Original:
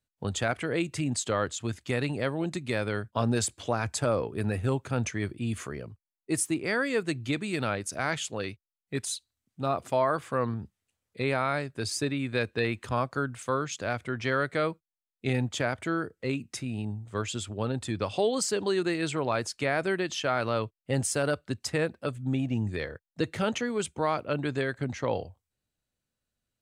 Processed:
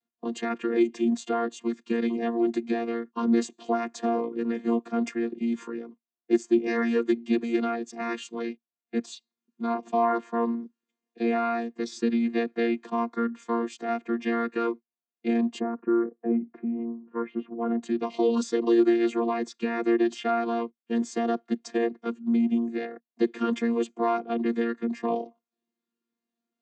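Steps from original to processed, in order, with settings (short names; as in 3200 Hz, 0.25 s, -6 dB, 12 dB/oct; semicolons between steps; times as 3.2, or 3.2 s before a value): chord vocoder bare fifth, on A#3; 15.59–17.82 LPF 1200 Hz -> 2200 Hz 24 dB/oct; gain +4 dB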